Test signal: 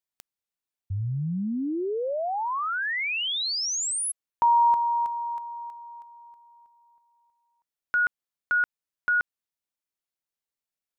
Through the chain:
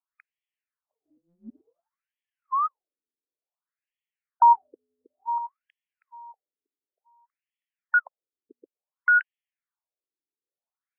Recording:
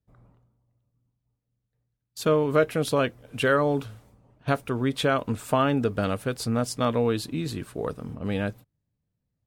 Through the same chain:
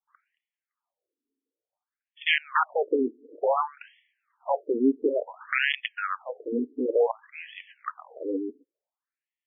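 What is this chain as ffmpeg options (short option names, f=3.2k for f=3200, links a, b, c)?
-af "aeval=exprs='(mod(5.62*val(0)+1,2)-1)/5.62':c=same,afftfilt=real='re*between(b*sr/1024,310*pow(2500/310,0.5+0.5*sin(2*PI*0.56*pts/sr))/1.41,310*pow(2500/310,0.5+0.5*sin(2*PI*0.56*pts/sr))*1.41)':imag='im*between(b*sr/1024,310*pow(2500/310,0.5+0.5*sin(2*PI*0.56*pts/sr))/1.41,310*pow(2500/310,0.5+0.5*sin(2*PI*0.56*pts/sr))*1.41)':win_size=1024:overlap=0.75,volume=5.5dB"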